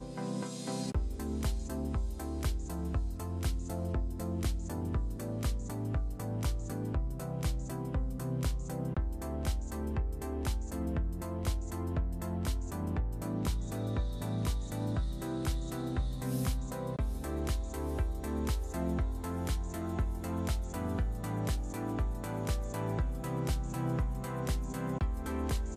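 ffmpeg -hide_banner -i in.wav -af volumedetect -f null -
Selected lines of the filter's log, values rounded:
mean_volume: -33.7 dB
max_volume: -21.0 dB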